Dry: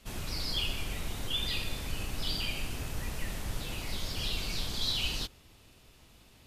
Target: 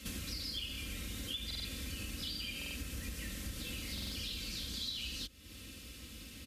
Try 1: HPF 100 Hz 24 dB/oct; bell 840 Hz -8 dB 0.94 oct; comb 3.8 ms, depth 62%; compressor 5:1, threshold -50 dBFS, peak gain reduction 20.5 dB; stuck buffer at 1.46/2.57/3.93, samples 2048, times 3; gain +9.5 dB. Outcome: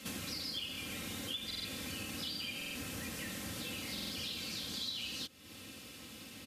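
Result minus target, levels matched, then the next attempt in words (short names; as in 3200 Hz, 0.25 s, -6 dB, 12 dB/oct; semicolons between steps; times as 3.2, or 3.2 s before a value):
1000 Hz band +6.0 dB; 125 Hz band -4.5 dB
HPF 50 Hz 24 dB/oct; bell 840 Hz -18.5 dB 0.94 oct; comb 3.8 ms, depth 62%; compressor 5:1, threshold -50 dBFS, peak gain reduction 20.5 dB; stuck buffer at 1.46/2.57/3.93, samples 2048, times 3; gain +9.5 dB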